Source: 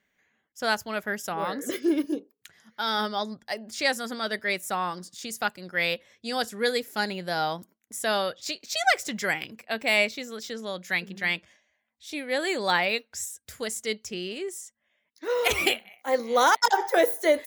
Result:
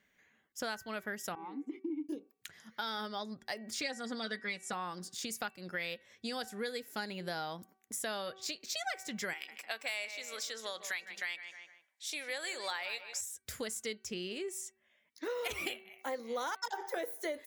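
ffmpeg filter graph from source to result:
-filter_complex "[0:a]asettb=1/sr,asplit=3[s0][s1][s2];[s0]atrim=end=1.354[s3];[s1]atrim=start=1.35:end=2.09,asetpts=PTS-STARTPTS,afade=t=in:d=0.004:c=qsin,afade=t=out:st=0.736:d=0.004:c=qsin,agate=range=0.0562:threshold=0.0141:ratio=16:release=100:detection=peak,asplit=3[s4][s5][s6];[s4]bandpass=f=300:t=q:w=8,volume=1[s7];[s5]bandpass=f=870:t=q:w=8,volume=0.501[s8];[s6]bandpass=f=2240:t=q:w=8,volume=0.355[s9];[s7][s8][s9]amix=inputs=3:normalize=0,highshelf=f=3700:g=-8.5[s10];[s2]atrim=start=2.086[s11];[s3][s10]acrossfade=d=0.004:c1=hsin:c2=qsin[s12];[s12][s11]acrossfade=d=0.004:c1=qsin:c2=hsin,asettb=1/sr,asplit=3[s13][s14][s15];[s13]atrim=end=3.814[s16];[s14]atrim=start=3.81:end=4.73,asetpts=PTS-STARTPTS,afade=t=in:d=0.004:c=qsin,afade=t=out:st=0.916:d=0.004:c=qsin,lowpass=f=8800:w=0.5412,lowpass=f=8800:w=1.3066,aecho=1:1:4.1:0.8,atrim=end_sample=40572[s17];[s15]atrim=start=4.726[s18];[s16][s17]acrossfade=d=0.004:c1=hsin:c2=qsin[s19];[s19][s18]acrossfade=d=0.004:c1=qsin:c2=hsin,asettb=1/sr,asplit=3[s20][s21][s22];[s20]atrim=end=9.334[s23];[s21]atrim=start=9.33:end=13.21,asetpts=PTS-STARTPTS,afade=t=in:d=0.004:c=qsin,afade=t=out:st=3.876:d=0.004:c=qsin,highpass=660,equalizer=f=7900:t=o:w=1.3:g=6,asplit=2[s24][s25];[s25]adelay=152,lowpass=f=3000:p=1,volume=0.224,asplit=2[s26][s27];[s27]adelay=152,lowpass=f=3000:p=1,volume=0.34,asplit=2[s28][s29];[s29]adelay=152,lowpass=f=3000:p=1,volume=0.34[s30];[s24][s26][s28][s30]amix=inputs=4:normalize=0,atrim=end_sample=171108[s31];[s22]atrim=start=13.206[s32];[s23][s31]acrossfade=d=0.004:c1=hsin:c2=qsin[s33];[s33][s32]acrossfade=d=0.004:c1=qsin:c2=hsin,equalizer=f=720:t=o:w=0.77:g=-2,bandreject=f=381.1:t=h:w=4,bandreject=f=762.2:t=h:w=4,bandreject=f=1143.3:t=h:w=4,bandreject=f=1524.4:t=h:w=4,bandreject=f=1905.5:t=h:w=4,bandreject=f=2286.6:t=h:w=4,bandreject=f=2667.7:t=h:w=4,acompressor=threshold=0.0126:ratio=5,volume=1.12"

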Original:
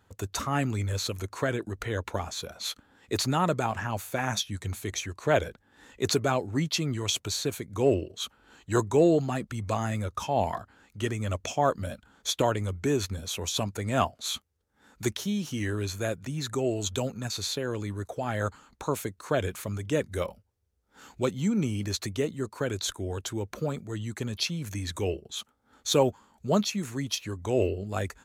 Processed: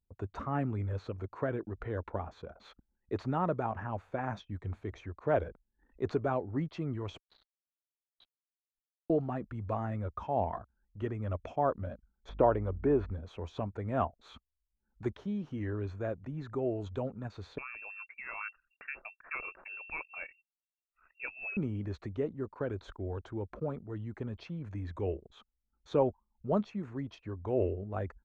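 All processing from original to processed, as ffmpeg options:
-filter_complex "[0:a]asettb=1/sr,asplit=3[s0][s1][s2];[s0]atrim=end=7.184[s3];[s1]atrim=start=7.18:end=9.1,asetpts=PTS-STARTPTS,afade=t=in:d=0.004:c=qsin,afade=t=out:st=1.916:d=0.004:c=qsin,bandpass=f=3900:t=q:w=13,acrusher=bits=5:mix=0:aa=0.5[s4];[s2]atrim=start=9.096[s5];[s3][s4]acrossfade=d=0.004:c1=hsin:c2=qsin[s6];[s6][s5]acrossfade=d=0.004:c1=qsin:c2=hsin,asettb=1/sr,asplit=3[s7][s8][s9];[s7]atrim=end=12.294[s10];[s8]atrim=start=12.29:end=13.11,asetpts=PTS-STARTPTS,afade=t=in:d=0.004:c=qsin,afade=t=out:st=0.816:d=0.004:c=qsin,acrossover=split=3300[s11][s12];[s12]acompressor=threshold=0.00398:ratio=4:attack=1:release=60[s13];[s11][s13]amix=inputs=2:normalize=0,equalizer=f=620:w=0.54:g=5.5,aeval=exprs='val(0)+0.00631*(sin(2*PI*50*n/s)+sin(2*PI*2*50*n/s)/2+sin(2*PI*3*50*n/s)/3+sin(2*PI*4*50*n/s)/4+sin(2*PI*5*50*n/s)/5)':c=same[s14];[s9]atrim=start=13.106[s15];[s10][s14]acrossfade=d=0.004:c1=hsin:c2=qsin[s16];[s16][s15]acrossfade=d=0.004:c1=qsin:c2=hsin,asettb=1/sr,asplit=3[s17][s18][s19];[s17]atrim=end=17.584[s20];[s18]atrim=start=17.58:end=21.57,asetpts=PTS-STARTPTS,afade=t=in:d=0.004:c=qsin,afade=t=out:st=3.986:d=0.004:c=qsin,lowshelf=f=130:g=11,lowpass=f=2400:t=q:w=0.5098,lowpass=f=2400:t=q:w=0.6013,lowpass=f=2400:t=q:w=0.9,lowpass=f=2400:t=q:w=2.563,afreqshift=-2800[s21];[s19]atrim=start=21.566[s22];[s20][s21]acrossfade=d=0.004:c1=hsin:c2=qsin[s23];[s23][s22]acrossfade=d=0.004:c1=qsin:c2=hsin,anlmdn=0.0158,asubboost=boost=3.5:cutoff=59,lowpass=1200,volume=0.631"

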